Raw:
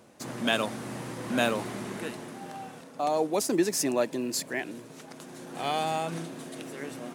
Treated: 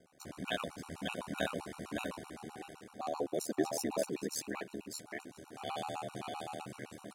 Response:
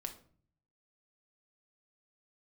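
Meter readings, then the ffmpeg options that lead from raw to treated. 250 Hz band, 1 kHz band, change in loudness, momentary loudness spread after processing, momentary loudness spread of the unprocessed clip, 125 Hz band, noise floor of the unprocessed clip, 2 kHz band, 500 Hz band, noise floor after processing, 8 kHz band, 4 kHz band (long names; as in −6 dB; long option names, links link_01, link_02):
−9.0 dB, −9.5 dB, −9.5 dB, 13 LU, 16 LU, −8.5 dB, −48 dBFS, −9.5 dB, −8.5 dB, −60 dBFS, −9.0 dB, −9.5 dB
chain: -af "aeval=exprs='val(0)*sin(2*PI*38*n/s)':channel_layout=same,aecho=1:1:580:0.708,afftfilt=real='re*gt(sin(2*PI*7.8*pts/sr)*(1-2*mod(floor(b*sr/1024/750),2)),0)':imag='im*gt(sin(2*PI*7.8*pts/sr)*(1-2*mod(floor(b*sr/1024/750),2)),0)':win_size=1024:overlap=0.75,volume=-4.5dB"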